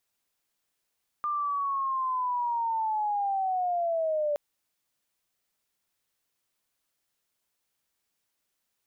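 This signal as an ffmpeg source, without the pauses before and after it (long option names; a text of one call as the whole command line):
ffmpeg -f lavfi -i "aevalsrc='pow(10,(-26.5+2*t/3.12)/20)*sin(2*PI*(1200*t-620*t*t/(2*3.12)))':duration=3.12:sample_rate=44100" out.wav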